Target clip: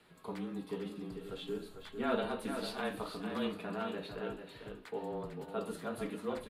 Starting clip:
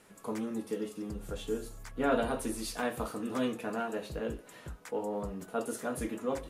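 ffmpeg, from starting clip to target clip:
-filter_complex "[0:a]highshelf=f=5000:t=q:w=3:g=-6.5,bandreject=f=570:w=17,bandreject=f=106.4:t=h:w=4,bandreject=f=212.8:t=h:w=4,bandreject=f=319.2:t=h:w=4,bandreject=f=425.6:t=h:w=4,bandreject=f=532:t=h:w=4,bandreject=f=638.4:t=h:w=4,bandreject=f=744.8:t=h:w=4,bandreject=f=851.2:t=h:w=4,bandreject=f=957.6:t=h:w=4,bandreject=f=1064:t=h:w=4,bandreject=f=1170.4:t=h:w=4,bandreject=f=1276.8:t=h:w=4,bandreject=f=1383.2:t=h:w=4,bandreject=f=1489.6:t=h:w=4,bandreject=f=1596:t=h:w=4,bandreject=f=1702.4:t=h:w=4,bandreject=f=1808.8:t=h:w=4,bandreject=f=1915.2:t=h:w=4,bandreject=f=2021.6:t=h:w=4,bandreject=f=2128:t=h:w=4,bandreject=f=2234.4:t=h:w=4,bandreject=f=2340.8:t=h:w=4,bandreject=f=2447.2:t=h:w=4,bandreject=f=2553.6:t=h:w=4,bandreject=f=2660:t=h:w=4,bandreject=f=2766.4:t=h:w=4,bandreject=f=2872.8:t=h:w=4,acrossover=split=160[s0][s1];[s0]acompressor=threshold=0.00251:ratio=6[s2];[s2][s1]amix=inputs=2:normalize=0,afreqshift=-26,aecho=1:1:448:0.422,volume=0.631"

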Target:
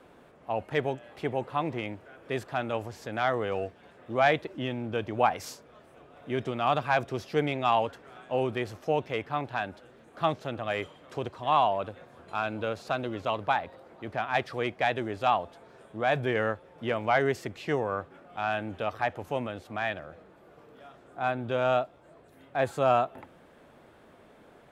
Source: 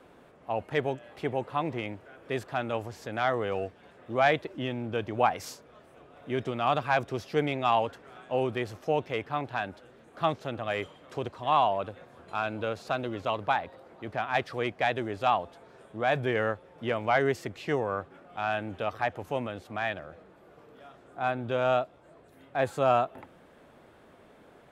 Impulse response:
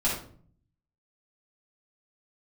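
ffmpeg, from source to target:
-filter_complex "[0:a]asplit=2[s0][s1];[1:a]atrim=start_sample=2205,atrim=end_sample=3528[s2];[s1][s2]afir=irnorm=-1:irlink=0,volume=0.0251[s3];[s0][s3]amix=inputs=2:normalize=0"

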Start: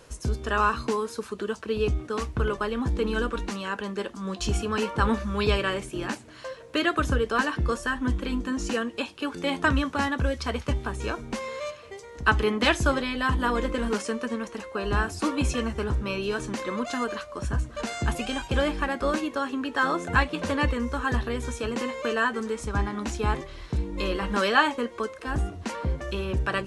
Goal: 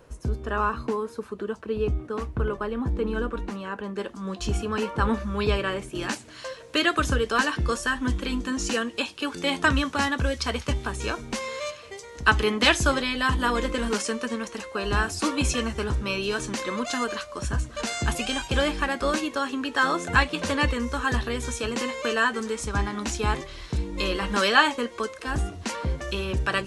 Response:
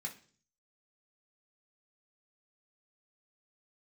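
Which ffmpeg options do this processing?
-af "asetnsamples=n=441:p=0,asendcmd='3.96 equalizer g -3;5.95 equalizer g 7',equalizer=f=6500:w=0.33:g=-10.5"

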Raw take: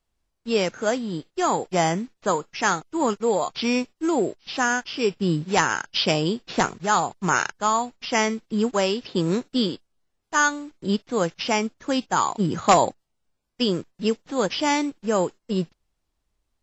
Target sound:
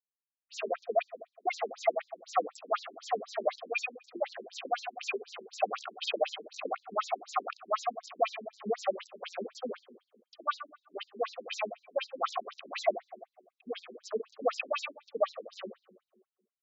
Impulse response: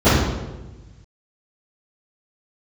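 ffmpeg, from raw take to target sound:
-filter_complex "[0:a]adynamicequalizer=threshold=0.0158:dfrequency=720:dqfactor=1.5:tfrequency=720:tqfactor=1.5:attack=5:release=100:ratio=0.375:range=3.5:mode=cutabove:tftype=bell,asplit=3[s0][s1][s2];[s0]bandpass=f=730:t=q:w=8,volume=1[s3];[s1]bandpass=f=1090:t=q:w=8,volume=0.501[s4];[s2]bandpass=f=2440:t=q:w=8,volume=0.355[s5];[s3][s4][s5]amix=inputs=3:normalize=0,equalizer=f=930:t=o:w=0.97:g=-4.5,asplit=2[s6][s7];[s7]acompressor=threshold=0.00631:ratio=6,volume=1[s8];[s6][s8]amix=inputs=2:normalize=0,aecho=1:1:1.6:0.97,asoftclip=type=tanh:threshold=0.0596,acrusher=bits=5:mix=0:aa=0.5,acrossover=split=4700[s9][s10];[s9]adelay=70[s11];[s11][s10]amix=inputs=2:normalize=0,asplit=2[s12][s13];[1:a]atrim=start_sample=2205[s14];[s13][s14]afir=irnorm=-1:irlink=0,volume=0.0119[s15];[s12][s15]amix=inputs=2:normalize=0,afftfilt=real='re*between(b*sr/1024,270*pow(5500/270,0.5+0.5*sin(2*PI*4*pts/sr))/1.41,270*pow(5500/270,0.5+0.5*sin(2*PI*4*pts/sr))*1.41)':imag='im*between(b*sr/1024,270*pow(5500/270,0.5+0.5*sin(2*PI*4*pts/sr))/1.41,270*pow(5500/270,0.5+0.5*sin(2*PI*4*pts/sr))*1.41)':win_size=1024:overlap=0.75,volume=2.37"

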